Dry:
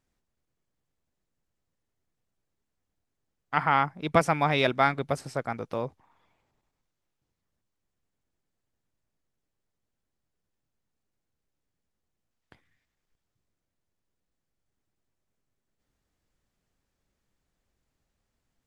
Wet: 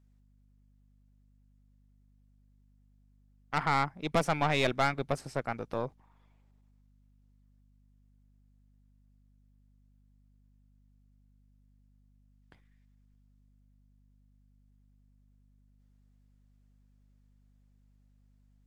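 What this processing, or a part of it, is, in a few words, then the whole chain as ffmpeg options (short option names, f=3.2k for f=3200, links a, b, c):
valve amplifier with mains hum: -af "aeval=exprs='(tanh(10*val(0)+0.7)-tanh(0.7))/10':c=same,aeval=exprs='val(0)+0.000708*(sin(2*PI*50*n/s)+sin(2*PI*2*50*n/s)/2+sin(2*PI*3*50*n/s)/3+sin(2*PI*4*50*n/s)/4+sin(2*PI*5*50*n/s)/5)':c=same"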